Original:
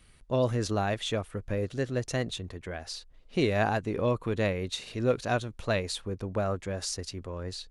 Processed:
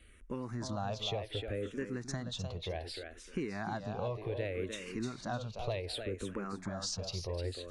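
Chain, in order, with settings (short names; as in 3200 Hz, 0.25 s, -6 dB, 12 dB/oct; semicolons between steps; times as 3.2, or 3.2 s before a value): high shelf 7500 Hz -8.5 dB; in parallel at -2 dB: limiter -21.5 dBFS, peak gain reduction 7 dB; on the sum: compressor, threshold -29 dBFS, peak gain reduction 11.5 dB; thinning echo 0.304 s, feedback 27%, high-pass 180 Hz, level -5.5 dB; endless phaser -0.66 Hz; gain -3 dB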